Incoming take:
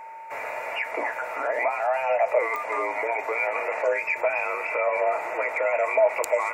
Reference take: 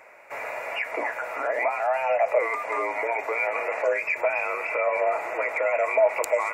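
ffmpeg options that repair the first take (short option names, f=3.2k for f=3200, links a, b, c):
-af "adeclick=t=4,bandreject=f=900:w=30"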